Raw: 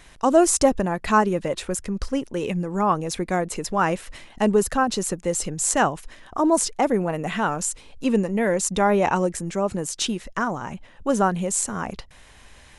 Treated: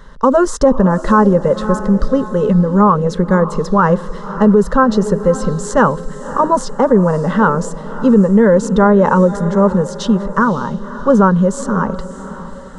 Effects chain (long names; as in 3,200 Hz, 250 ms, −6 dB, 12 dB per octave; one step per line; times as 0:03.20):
head-to-tape spacing loss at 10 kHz 28 dB
phaser with its sweep stopped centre 480 Hz, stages 8
feedback delay with all-pass diffusion 566 ms, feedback 44%, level −14.5 dB
boost into a limiter +16.5 dB
level −1 dB